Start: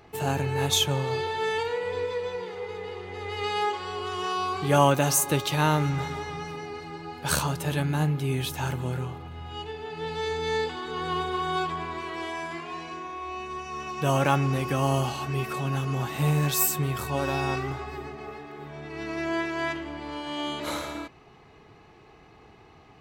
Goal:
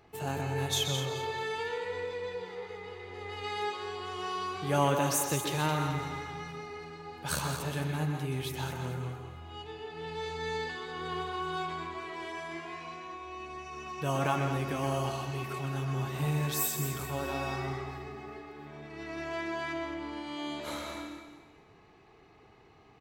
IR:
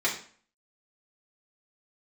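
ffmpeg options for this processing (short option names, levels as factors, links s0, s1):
-filter_complex "[0:a]aecho=1:1:216|432|648|864:0.316|0.101|0.0324|0.0104,asplit=2[s0][s1];[1:a]atrim=start_sample=2205,adelay=123[s2];[s1][s2]afir=irnorm=-1:irlink=0,volume=0.188[s3];[s0][s3]amix=inputs=2:normalize=0,volume=0.422"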